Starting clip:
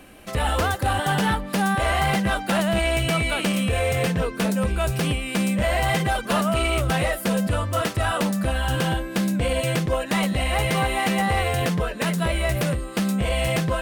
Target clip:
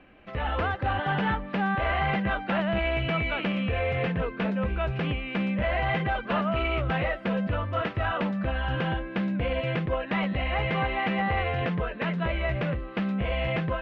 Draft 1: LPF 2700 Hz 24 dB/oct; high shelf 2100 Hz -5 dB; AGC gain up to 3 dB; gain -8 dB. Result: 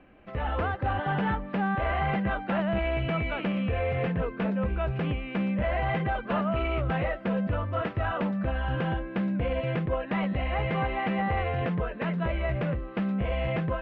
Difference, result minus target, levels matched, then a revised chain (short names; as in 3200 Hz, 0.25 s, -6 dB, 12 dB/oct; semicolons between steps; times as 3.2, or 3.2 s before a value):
4000 Hz band -5.0 dB
LPF 2700 Hz 24 dB/oct; high shelf 2100 Hz +4 dB; AGC gain up to 3 dB; gain -8 dB